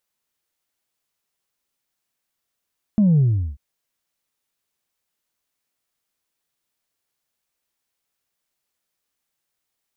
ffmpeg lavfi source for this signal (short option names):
-f lavfi -i "aevalsrc='0.237*clip((0.59-t)/0.38,0,1)*tanh(1.06*sin(2*PI*220*0.59/log(65/220)*(exp(log(65/220)*t/0.59)-1)))/tanh(1.06)':d=0.59:s=44100"